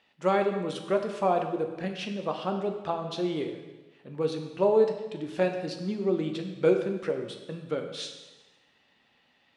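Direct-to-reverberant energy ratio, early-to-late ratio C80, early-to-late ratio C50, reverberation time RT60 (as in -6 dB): 4.5 dB, 9.0 dB, 7.0 dB, 1.2 s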